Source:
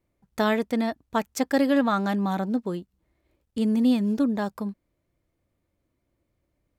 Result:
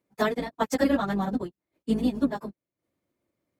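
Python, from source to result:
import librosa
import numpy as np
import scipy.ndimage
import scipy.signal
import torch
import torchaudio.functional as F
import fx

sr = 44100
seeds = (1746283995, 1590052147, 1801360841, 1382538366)

y = fx.octave_divider(x, sr, octaves=2, level_db=-4.0)
y = scipy.signal.sosfilt(scipy.signal.butter(2, 160.0, 'highpass', fs=sr, output='sos'), y)
y = fx.transient(y, sr, attack_db=4, sustain_db=-11)
y = fx.stretch_vocoder_free(y, sr, factor=0.53)
y = y * 10.0 ** (1.5 / 20.0)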